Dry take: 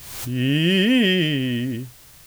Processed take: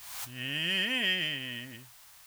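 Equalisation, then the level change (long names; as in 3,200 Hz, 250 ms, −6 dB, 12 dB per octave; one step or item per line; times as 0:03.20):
low shelf with overshoot 560 Hz −13.5 dB, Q 1.5
−7.0 dB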